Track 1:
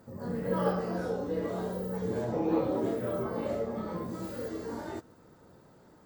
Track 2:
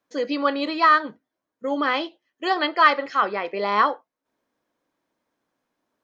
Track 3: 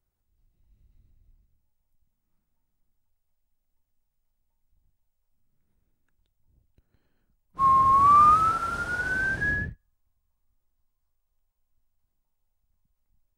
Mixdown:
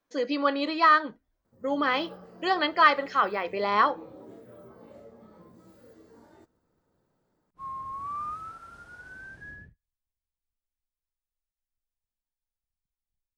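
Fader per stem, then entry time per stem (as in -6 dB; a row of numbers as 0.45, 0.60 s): -17.0, -3.0, -18.0 dB; 1.45, 0.00, 0.00 s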